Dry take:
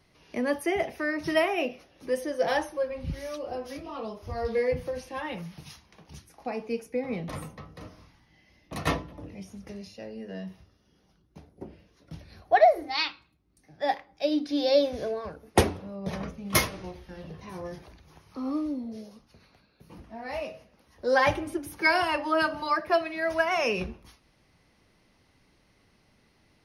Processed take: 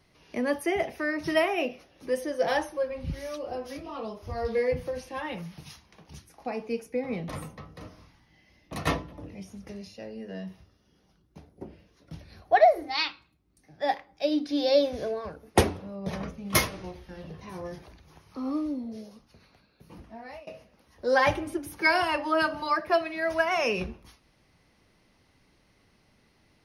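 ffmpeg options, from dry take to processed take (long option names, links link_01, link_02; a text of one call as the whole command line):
ffmpeg -i in.wav -filter_complex "[0:a]asplit=2[link_01][link_02];[link_01]atrim=end=20.47,asetpts=PTS-STARTPTS,afade=type=out:start_time=20.05:duration=0.42:silence=0.0707946[link_03];[link_02]atrim=start=20.47,asetpts=PTS-STARTPTS,afade=type=in:duration=0.004:curve=hsin:silence=0.0707946[link_04];[link_03][link_04]concat=n=2:v=0:a=1" out.wav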